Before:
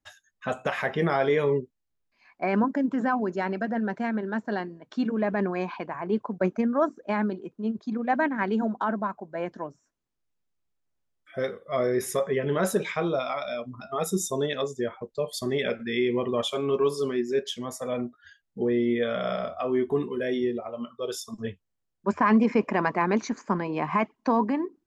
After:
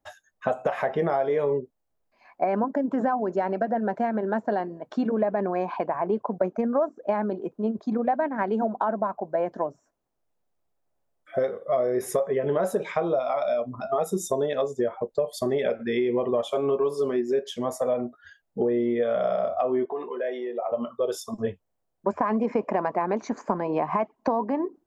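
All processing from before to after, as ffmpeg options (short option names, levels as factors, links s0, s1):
-filter_complex "[0:a]asettb=1/sr,asplit=3[s0][s1][s2];[s0]atrim=end=19.854[s3];[s1]atrim=start=19.85:end=20.72,asetpts=PTS-STARTPTS,afade=t=in:d=0.004:c=qsin,afade=t=out:st=0.866:d=0.004:c=qsin,highpass=620,lowpass=3100,acompressor=threshold=0.0158:ratio=2.5:attack=3.2:release=140:knee=1:detection=peak[s4];[s2]atrim=start=20.716[s5];[s3][s4]acrossfade=d=0.004:c1=hsin:c2=qsin[s6];[s6][s5]acrossfade=d=0.004:c1=qsin:c2=hsin,equalizer=f=660:w=1:g=12,acompressor=threshold=0.0631:ratio=5,equalizer=f=3700:w=0.46:g=-4.5,volume=1.33"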